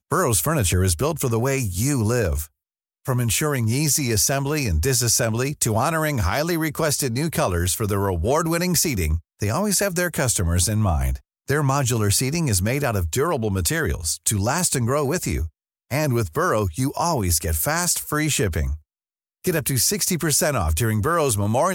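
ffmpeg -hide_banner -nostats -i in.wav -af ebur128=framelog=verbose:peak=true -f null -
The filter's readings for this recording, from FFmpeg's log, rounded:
Integrated loudness:
  I:         -21.2 LUFS
  Threshold: -31.3 LUFS
Loudness range:
  LRA:         2.0 LU
  Threshold: -41.6 LUFS
  LRA low:   -22.4 LUFS
  LRA high:  -20.4 LUFS
True peak:
  Peak:       -5.5 dBFS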